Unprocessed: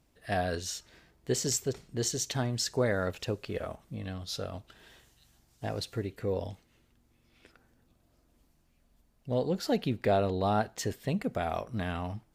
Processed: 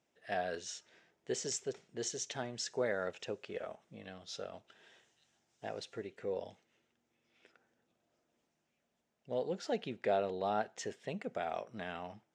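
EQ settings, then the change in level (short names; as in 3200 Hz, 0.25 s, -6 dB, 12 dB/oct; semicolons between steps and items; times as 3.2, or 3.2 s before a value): speaker cabinet 260–7100 Hz, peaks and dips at 280 Hz -7 dB, 1100 Hz -5 dB, 4400 Hz -8 dB; -4.5 dB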